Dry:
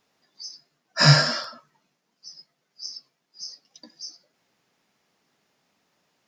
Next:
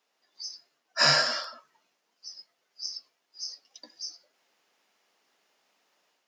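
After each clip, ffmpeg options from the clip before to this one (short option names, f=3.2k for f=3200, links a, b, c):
-af "highpass=410,equalizer=f=2.9k:w=7.2:g=3,dynaudnorm=f=210:g=3:m=5.5dB,volume=-5.5dB"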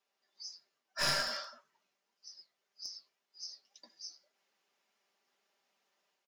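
-af "aecho=1:1:5.1:0.48,aeval=exprs='clip(val(0),-1,0.0631)':c=same,flanger=delay=4.4:depth=9.4:regen=-64:speed=1.8:shape=triangular,volume=-5dB"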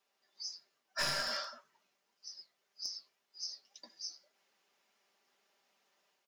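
-af "acompressor=threshold=-35dB:ratio=4,volume=3.5dB"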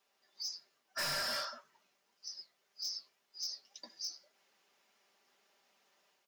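-af "asoftclip=type=hard:threshold=-36.5dB,volume=3dB"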